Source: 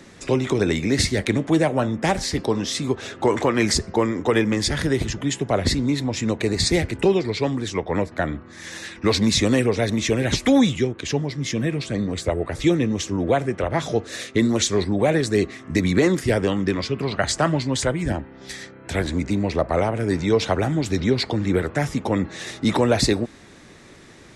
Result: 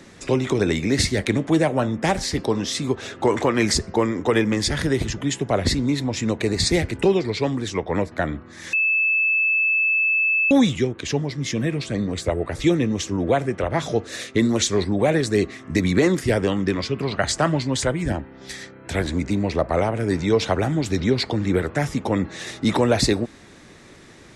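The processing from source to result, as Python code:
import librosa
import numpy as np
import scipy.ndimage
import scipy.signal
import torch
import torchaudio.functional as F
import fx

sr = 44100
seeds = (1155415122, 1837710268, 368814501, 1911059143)

y = fx.edit(x, sr, fx.bleep(start_s=8.73, length_s=1.78, hz=2620.0, db=-16.5), tone=tone)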